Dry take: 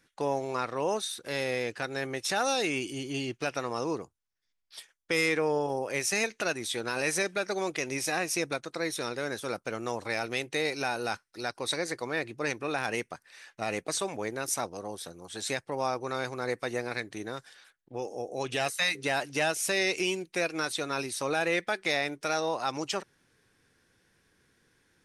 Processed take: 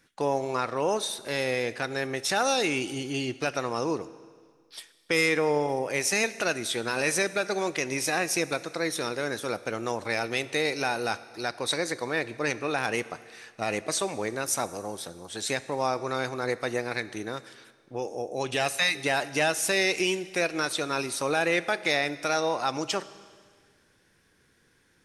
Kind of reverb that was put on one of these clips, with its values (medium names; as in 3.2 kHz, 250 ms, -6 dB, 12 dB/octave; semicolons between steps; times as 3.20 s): Schroeder reverb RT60 1.8 s, combs from 27 ms, DRR 15.5 dB; trim +3 dB